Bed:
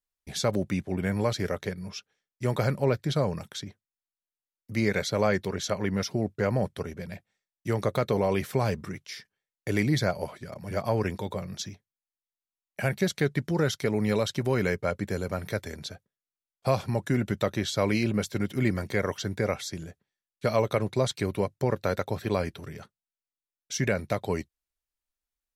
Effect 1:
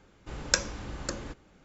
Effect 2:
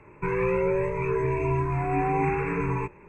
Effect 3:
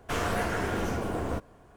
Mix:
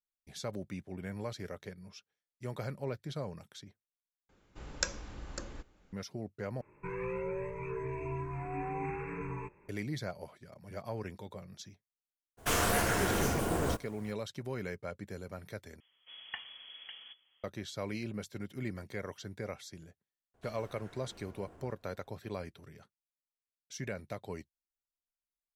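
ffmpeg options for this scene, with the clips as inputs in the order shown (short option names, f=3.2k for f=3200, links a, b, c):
-filter_complex "[1:a]asplit=2[a][b];[3:a]asplit=2[c][d];[0:a]volume=-13dB[e];[a]asubboost=boost=4.5:cutoff=70[f];[c]crystalizer=i=2.5:c=0[g];[b]lowpass=f=2.9k:t=q:w=0.5098,lowpass=f=2.9k:t=q:w=0.6013,lowpass=f=2.9k:t=q:w=0.9,lowpass=f=2.9k:t=q:w=2.563,afreqshift=-3400[h];[d]acompressor=threshold=-36dB:ratio=6:attack=3.2:release=140:knee=1:detection=peak[i];[e]asplit=4[j][k][l][m];[j]atrim=end=4.294[n];[f]atrim=end=1.64,asetpts=PTS-STARTPTS,volume=-8dB[o];[k]atrim=start=5.926:end=6.614[p];[2:a]atrim=end=3.08,asetpts=PTS-STARTPTS,volume=-12.5dB[q];[l]atrim=start=9.686:end=15.804[r];[h]atrim=end=1.64,asetpts=PTS-STARTPTS,volume=-12.5dB[s];[m]atrim=start=17.436[t];[g]atrim=end=1.76,asetpts=PTS-STARTPTS,volume=-1.5dB,afade=t=in:d=0.02,afade=t=out:st=1.74:d=0.02,adelay=12370[u];[i]atrim=end=1.76,asetpts=PTS-STARTPTS,volume=-16.5dB,afade=t=in:d=0.004:c=hsin,afade=t=out:st=1.756:d=0.004:c=hsin,adelay=20340[v];[n][o]acrossfade=d=0.004:c1=hsin:c2=hsin[w];[w][p]acrossfade=d=0.004:c1=hsin:c2=hsin[x];[x][q]acrossfade=d=0.004:c1=hsin:c2=hsin[y];[y][r]acrossfade=d=0.004:c1=hsin:c2=hsin[z];[z][s]acrossfade=d=0.004:c1=hsin:c2=hsin[aa];[aa][t]acrossfade=d=0.004:c1=hsin:c2=hsin[ab];[ab][u][v]amix=inputs=3:normalize=0"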